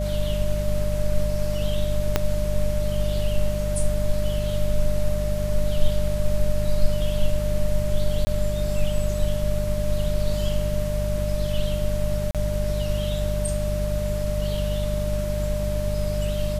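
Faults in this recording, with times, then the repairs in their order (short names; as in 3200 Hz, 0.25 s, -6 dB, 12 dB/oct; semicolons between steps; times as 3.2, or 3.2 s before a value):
hum 50 Hz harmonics 4 -26 dBFS
tone 600 Hz -28 dBFS
2.16 pop -5 dBFS
8.25–8.27 gap 20 ms
12.31–12.35 gap 37 ms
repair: de-click; notch 600 Hz, Q 30; de-hum 50 Hz, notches 4; interpolate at 8.25, 20 ms; interpolate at 12.31, 37 ms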